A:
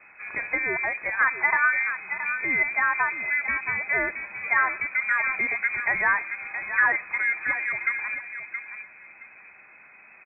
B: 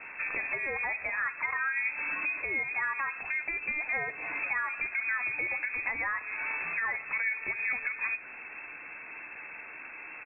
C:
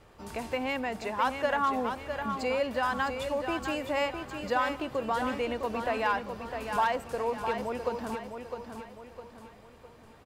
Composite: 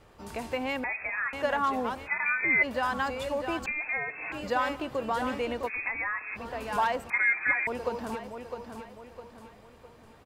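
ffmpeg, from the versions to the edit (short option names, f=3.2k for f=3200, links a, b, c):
-filter_complex "[1:a]asplit=3[a][b][c];[0:a]asplit=2[d][e];[2:a]asplit=6[f][g][h][i][j][k];[f]atrim=end=0.842[l];[a]atrim=start=0.838:end=1.332[m];[g]atrim=start=1.328:end=2.09[n];[d]atrim=start=2.05:end=2.65[o];[h]atrim=start=2.61:end=3.662[p];[b]atrim=start=3.658:end=4.322[q];[i]atrim=start=4.318:end=5.7[r];[c]atrim=start=5.66:end=6.38[s];[j]atrim=start=6.34:end=7.102[t];[e]atrim=start=7.098:end=7.672[u];[k]atrim=start=7.668[v];[l][m]acrossfade=d=0.004:c1=hsin:c2=hsin[w];[w][n]acrossfade=d=0.004:c1=hsin:c2=hsin[x];[x][o]acrossfade=d=0.04:c1=tri:c2=tri[y];[y][p]acrossfade=d=0.04:c1=tri:c2=tri[z];[z][q]acrossfade=d=0.004:c1=hsin:c2=hsin[aa];[aa][r]acrossfade=d=0.004:c1=hsin:c2=hsin[ab];[ab][s]acrossfade=d=0.04:c1=tri:c2=tri[ac];[ac][t]acrossfade=d=0.04:c1=tri:c2=tri[ad];[ad][u]acrossfade=d=0.004:c1=hsin:c2=hsin[ae];[ae][v]acrossfade=d=0.004:c1=hsin:c2=hsin"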